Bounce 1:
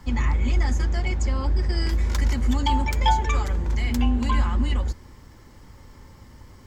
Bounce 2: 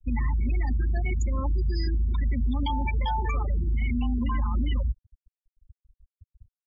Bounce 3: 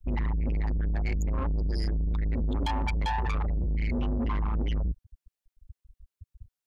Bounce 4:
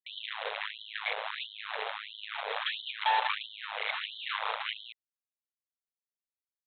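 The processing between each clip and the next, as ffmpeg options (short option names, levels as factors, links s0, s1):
-af "afftfilt=real='re*gte(hypot(re,im),0.0794)':imag='im*gte(hypot(re,im),0.0794)':win_size=1024:overlap=0.75,alimiter=limit=0.112:level=0:latency=1:release=45"
-af "asoftclip=type=tanh:threshold=0.0316,volume=1.78"
-af "aresample=8000,acrusher=bits=4:mix=0:aa=0.000001,aresample=44100,afftfilt=real='re*gte(b*sr/1024,400*pow(3000/400,0.5+0.5*sin(2*PI*1.5*pts/sr)))':imag='im*gte(b*sr/1024,400*pow(3000/400,0.5+0.5*sin(2*PI*1.5*pts/sr)))':win_size=1024:overlap=0.75,volume=1.33"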